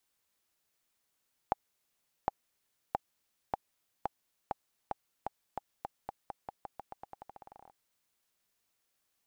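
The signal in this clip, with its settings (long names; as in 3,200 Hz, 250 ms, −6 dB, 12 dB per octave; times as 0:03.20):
bouncing ball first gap 0.76 s, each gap 0.88, 803 Hz, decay 21 ms −14 dBFS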